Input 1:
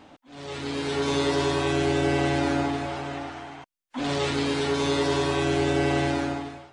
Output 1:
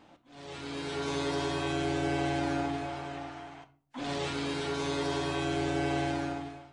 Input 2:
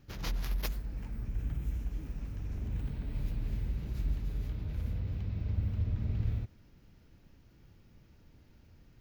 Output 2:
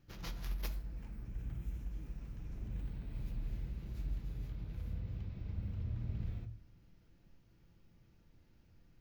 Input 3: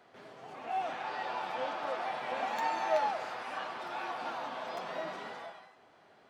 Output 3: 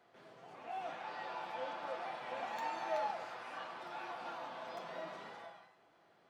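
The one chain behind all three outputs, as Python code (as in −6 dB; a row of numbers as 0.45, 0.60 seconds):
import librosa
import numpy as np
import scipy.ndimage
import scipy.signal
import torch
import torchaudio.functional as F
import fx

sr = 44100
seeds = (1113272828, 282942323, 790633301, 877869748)

y = fx.room_shoebox(x, sr, seeds[0], volume_m3=460.0, walls='furnished', distance_m=0.78)
y = y * librosa.db_to_amplitude(-7.5)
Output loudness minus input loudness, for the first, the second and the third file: −7.0, −7.0, −7.0 LU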